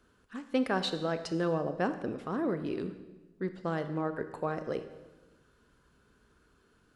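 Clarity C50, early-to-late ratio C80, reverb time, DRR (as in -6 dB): 11.0 dB, 12.5 dB, 1.2 s, 9.5 dB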